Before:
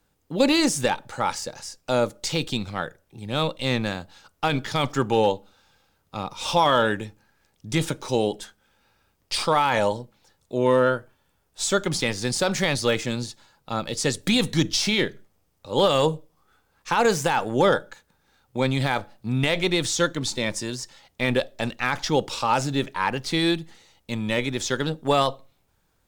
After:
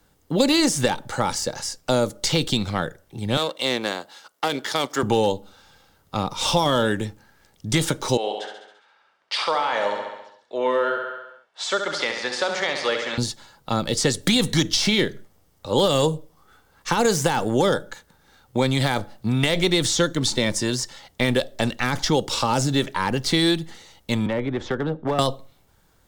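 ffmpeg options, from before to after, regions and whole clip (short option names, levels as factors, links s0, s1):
-filter_complex "[0:a]asettb=1/sr,asplit=3[s0][s1][s2];[s0]atrim=end=3.374[s3];[s1]atrim=start=3.37:end=5.03,asetpts=PTS-STARTPTS,afade=t=in:d=0.004:c=qsin,afade=t=out:st=1.656:d=0.004:c=qsin,aeval=exprs='if(lt(val(0),0),0.447*val(0),val(0))':c=same,highpass=390[s4];[s2]atrim=start=5.026[s5];[s3][s4]acrossfade=d=0.004:c1=hsin:c2=qsin[s6];[s6][s5]acrossfade=d=0.004:c1=qsin:c2=hsin,asettb=1/sr,asplit=3[s7][s8][s9];[s7]atrim=end=8.174[s10];[s8]atrim=start=8.17:end=13.18,asetpts=PTS-STARTPTS,afade=t=in:d=0.004:c=qsin,afade=t=out:st=5.006:d=0.004:c=qsin,highpass=710,lowpass=3000,aecho=1:1:68|136|204|272|340|408|476:0.447|0.259|0.15|0.0872|0.0505|0.0293|0.017,atrim=end_sample=220941[s11];[s9]atrim=start=13.176[s12];[s10][s11]acrossfade=d=0.004:c1=hsin:c2=qsin[s13];[s13][s12]acrossfade=d=0.004:c1=qsin:c2=hsin,asettb=1/sr,asplit=3[s14][s15][s16];[s14]atrim=end=24.264[s17];[s15]atrim=start=24.26:end=25.19,asetpts=PTS-STARTPTS,afade=t=in:d=0.004:c=qsin,afade=t=out:st=0.926:d=0.004:c=qsin,lowpass=1700,acrossover=split=330|1000[s18][s19][s20];[s18]acompressor=threshold=0.02:ratio=4[s21];[s19]acompressor=threshold=0.0224:ratio=4[s22];[s20]acompressor=threshold=0.00891:ratio=4[s23];[s21][s22][s23]amix=inputs=3:normalize=0,volume=16.8,asoftclip=hard,volume=0.0596[s24];[s16]atrim=start=25.186[s25];[s17][s24]acrossfade=d=0.004:c1=hsin:c2=qsin[s26];[s26][s25]acrossfade=d=0.004:c1=qsin:c2=hsin,bandreject=f=2500:w=12,acrossover=split=460|4200[s27][s28][s29];[s27]acompressor=threshold=0.0398:ratio=4[s30];[s28]acompressor=threshold=0.0251:ratio=4[s31];[s29]acompressor=threshold=0.0224:ratio=4[s32];[s30][s31][s32]amix=inputs=3:normalize=0,volume=2.51"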